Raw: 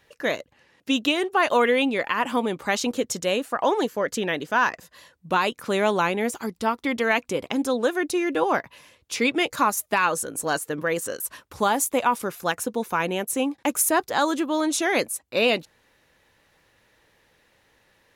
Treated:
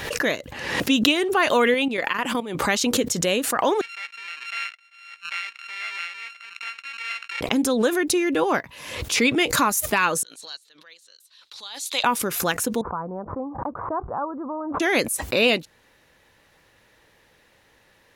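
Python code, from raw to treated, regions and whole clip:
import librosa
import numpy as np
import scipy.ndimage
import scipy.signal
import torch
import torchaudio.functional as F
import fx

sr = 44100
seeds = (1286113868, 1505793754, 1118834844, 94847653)

y = fx.chain(x, sr, fx.low_shelf(hz=150.0, db=-7.0),
    fx.level_steps(step_db=12), at=(1.74, 2.55))
y = fx.chain(y, sr, fx.sample_sort(block=32),
    fx.ladder_bandpass(hz=2400.0, resonance_pct=65), at=(3.81, 7.41))
y = fx.chain(y, sr, fx.bandpass_q(hz=4000.0, q=6.0),
    fx.upward_expand(threshold_db=-56.0, expansion=1.5), at=(10.23, 12.04))
y = fx.chain(y, sr, fx.steep_lowpass(hz=1200.0, slope=48),
    fx.peak_eq(hz=330.0, db=-11.5, octaves=1.8), at=(12.81, 14.8))
y = fx.dynamic_eq(y, sr, hz=800.0, q=0.83, threshold_db=-35.0, ratio=4.0, max_db=-5)
y = fx.pre_swell(y, sr, db_per_s=54.0)
y = F.gain(torch.from_numpy(y), 3.5).numpy()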